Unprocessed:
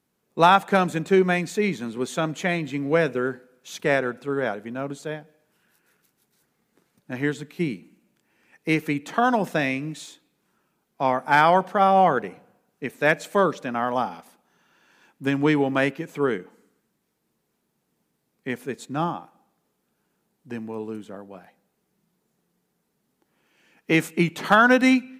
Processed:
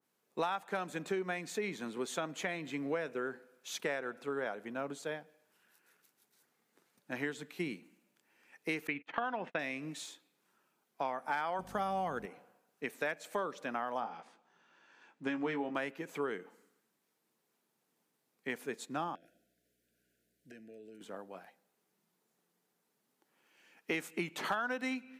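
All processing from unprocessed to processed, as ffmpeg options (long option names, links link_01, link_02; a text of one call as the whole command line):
ffmpeg -i in.wav -filter_complex "[0:a]asettb=1/sr,asplit=3[link_01][link_02][link_03];[link_01]atrim=end=8.874[link_04];[link_02]atrim=start=8.87:end=9.59,asetpts=PTS-STARTPTS,afade=type=in:duration=0.004:curve=qsin,afade=type=out:start_time=0.716:duration=0.004:curve=qsin,agate=range=-35dB:threshold=-37dB:ratio=16:release=100:detection=peak,lowpass=frequency=2600:width_type=q:width=2.1[link_05];[link_03]atrim=start=9.586[link_06];[link_04][link_05]acrossfade=duration=0.004:curve1=hsin:curve2=qsin[link_07];[link_07][link_06]acrossfade=duration=0.004:curve1=qsin:curve2=hsin,asettb=1/sr,asplit=3[link_08][link_09][link_10];[link_08]atrim=end=11.594[link_11];[link_09]atrim=start=11.59:end=12.26,asetpts=PTS-STARTPTS,afade=type=in:duration=0.004:curve=qsin,afade=type=out:start_time=0.666:duration=0.004:curve=qsin,bass=frequency=250:gain=12,treble=frequency=4000:gain=13,aeval=exprs='val(0)+0.0355*(sin(2*PI*50*n/s)+sin(2*PI*2*50*n/s)/2+sin(2*PI*3*50*n/s)/3+sin(2*PI*4*50*n/s)/4+sin(2*PI*5*50*n/s)/5)':channel_layout=same[link_12];[link_10]atrim=start=12.256[link_13];[link_11][link_12]acrossfade=duration=0.004:curve1=hsin:curve2=qsin[link_14];[link_14][link_13]acrossfade=duration=0.004:curve1=qsin:curve2=hsin,asettb=1/sr,asplit=3[link_15][link_16][link_17];[link_15]atrim=end=14.004[link_18];[link_16]atrim=start=14:end=15.75,asetpts=PTS-STARTPTS,afade=type=in:duration=0.004:curve=qsin,afade=type=out:start_time=1.746:duration=0.004:curve=qsin,lowpass=frequency=8400:width=0.5412,lowpass=frequency=8400:width=1.3066,highshelf=frequency=4800:gain=-10,asplit=2[link_19][link_20];[link_20]adelay=18,volume=-6dB[link_21];[link_19][link_21]amix=inputs=2:normalize=0,atrim=end_sample=77175[link_22];[link_17]atrim=start=15.746[link_23];[link_18][link_22]acrossfade=duration=0.004:curve1=hsin:curve2=qsin[link_24];[link_24][link_23]acrossfade=duration=0.004:curve1=qsin:curve2=hsin,asettb=1/sr,asplit=3[link_25][link_26][link_27];[link_25]atrim=end=19.154[link_28];[link_26]atrim=start=19.15:end=21.01,asetpts=PTS-STARTPTS,afade=type=in:duration=0.004:curve=qsin,afade=type=out:start_time=1.856:duration=0.004:curve=qsin,acompressor=threshold=-41dB:ratio=6:attack=3.2:release=140:knee=1:detection=peak,aeval=exprs='val(0)+0.000355*(sin(2*PI*60*n/s)+sin(2*PI*2*60*n/s)/2+sin(2*PI*3*60*n/s)/3+sin(2*PI*4*60*n/s)/4+sin(2*PI*5*60*n/s)/5)':channel_layout=same,asuperstop=centerf=1000:order=20:qfactor=1.4[link_29];[link_27]atrim=start=21.006[link_30];[link_28][link_29]acrossfade=duration=0.004:curve1=hsin:curve2=qsin[link_31];[link_31][link_30]acrossfade=duration=0.004:curve1=qsin:curve2=hsin,highpass=frequency=480:poles=1,acompressor=threshold=-29dB:ratio=6,adynamicequalizer=threshold=0.00501:dfrequency=2000:dqfactor=0.7:tfrequency=2000:tqfactor=0.7:attack=5:release=100:ratio=0.375:range=1.5:mode=cutabove:tftype=highshelf,volume=-3.5dB" out.wav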